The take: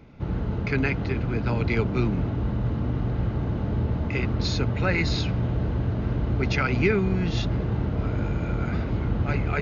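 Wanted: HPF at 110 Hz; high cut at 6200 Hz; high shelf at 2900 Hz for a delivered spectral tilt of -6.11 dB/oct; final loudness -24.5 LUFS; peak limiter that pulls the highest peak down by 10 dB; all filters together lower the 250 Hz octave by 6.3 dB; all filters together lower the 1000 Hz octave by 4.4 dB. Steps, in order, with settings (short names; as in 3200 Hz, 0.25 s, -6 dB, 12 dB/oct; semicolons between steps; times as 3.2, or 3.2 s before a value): HPF 110 Hz; LPF 6200 Hz; bell 250 Hz -8.5 dB; bell 1000 Hz -5 dB; high shelf 2900 Hz -5 dB; gain +7.5 dB; limiter -14.5 dBFS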